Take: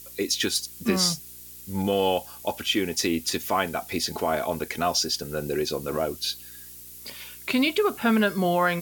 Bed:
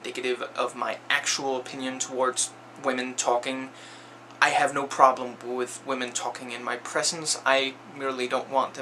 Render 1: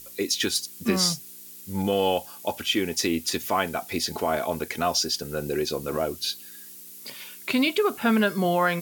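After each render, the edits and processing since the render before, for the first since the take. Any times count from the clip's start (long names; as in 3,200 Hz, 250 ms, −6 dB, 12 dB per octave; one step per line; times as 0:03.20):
hum removal 60 Hz, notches 2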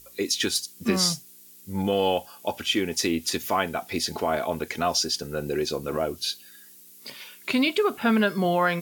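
noise reduction from a noise print 6 dB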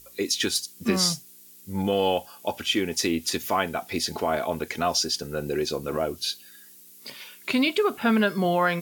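no processing that can be heard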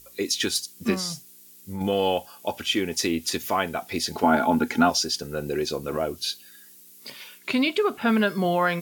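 0:00.94–0:01.81: downward compressor 3 to 1, threshold −28 dBFS
0:04.23–0:04.90: hollow resonant body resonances 250/830/1,400 Hz, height 15 dB, ringing for 40 ms
0:07.38–0:08.08: high-shelf EQ 7,900 Hz −5.5 dB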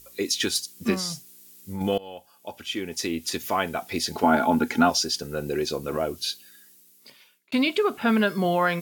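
0:01.98–0:03.69: fade in, from −22 dB
0:06.23–0:07.52: fade out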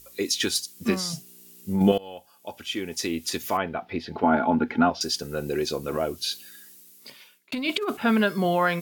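0:01.13–0:01.92: hollow resonant body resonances 200/380/620/2,800 Hz, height 9 dB, ringing for 25 ms
0:03.57–0:05.01: high-frequency loss of the air 350 metres
0:06.31–0:07.97: compressor whose output falls as the input rises −25 dBFS, ratio −0.5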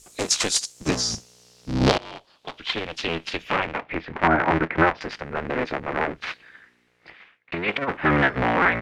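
sub-harmonics by changed cycles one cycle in 3, inverted
low-pass filter sweep 7,600 Hz → 2,000 Hz, 0:00.51–0:04.27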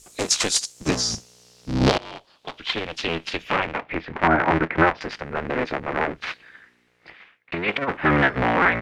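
level +1 dB
brickwall limiter −3 dBFS, peak gain reduction 2 dB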